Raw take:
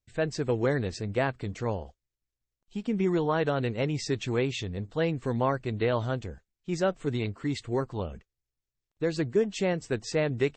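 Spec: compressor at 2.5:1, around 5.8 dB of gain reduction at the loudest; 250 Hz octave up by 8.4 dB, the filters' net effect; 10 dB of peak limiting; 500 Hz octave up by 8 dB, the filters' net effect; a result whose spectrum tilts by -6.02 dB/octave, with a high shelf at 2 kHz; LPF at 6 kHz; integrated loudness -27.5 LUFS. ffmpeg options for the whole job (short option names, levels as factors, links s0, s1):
-af "lowpass=6000,equalizer=f=250:t=o:g=9,equalizer=f=500:t=o:g=6.5,highshelf=f=2000:g=5,acompressor=threshold=0.0891:ratio=2.5,volume=1.5,alimiter=limit=0.133:level=0:latency=1"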